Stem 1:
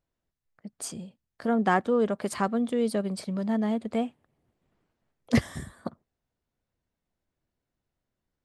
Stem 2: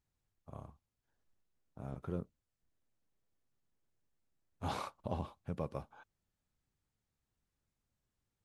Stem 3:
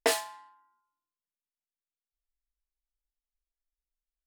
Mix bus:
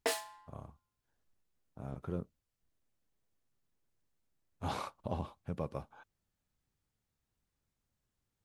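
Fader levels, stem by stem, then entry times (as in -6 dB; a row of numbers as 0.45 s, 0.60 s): mute, +1.0 dB, -7.5 dB; mute, 0.00 s, 0.00 s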